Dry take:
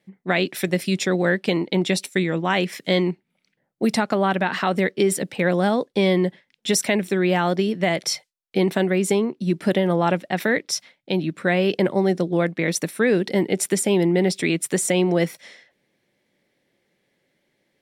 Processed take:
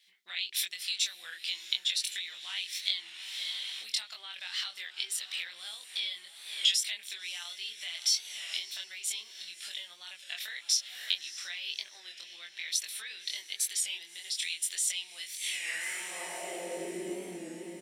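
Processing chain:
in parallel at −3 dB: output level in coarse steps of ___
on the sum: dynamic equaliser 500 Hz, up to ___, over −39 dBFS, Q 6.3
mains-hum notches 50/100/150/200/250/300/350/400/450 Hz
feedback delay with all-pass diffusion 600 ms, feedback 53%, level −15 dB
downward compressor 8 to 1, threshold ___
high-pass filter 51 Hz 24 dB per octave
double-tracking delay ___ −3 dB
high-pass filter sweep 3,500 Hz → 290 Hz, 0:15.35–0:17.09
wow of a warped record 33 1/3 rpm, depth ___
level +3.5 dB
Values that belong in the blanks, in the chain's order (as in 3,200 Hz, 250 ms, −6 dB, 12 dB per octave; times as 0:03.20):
16 dB, −5 dB, −32 dBFS, 23 ms, 100 cents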